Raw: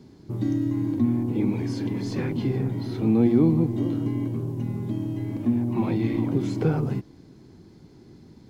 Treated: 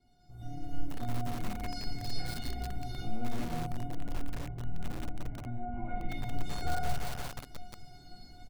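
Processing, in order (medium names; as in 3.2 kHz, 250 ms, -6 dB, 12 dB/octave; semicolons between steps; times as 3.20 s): octave divider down 1 oct, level -2 dB; flange 1.2 Hz, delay 2.7 ms, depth 5.8 ms, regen +25%; reverse bouncing-ball echo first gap 50 ms, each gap 1.25×, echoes 5; compression 2:1, threshold -39 dBFS, peak gain reduction 14 dB; 3.83–6.09 s: low-pass 2.2 kHz 24 dB/octave; feedback comb 720 Hz, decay 0.33 s, mix 100%; level rider gain up to 14.5 dB; bit-crushed delay 175 ms, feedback 80%, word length 7-bit, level -10 dB; trim +11 dB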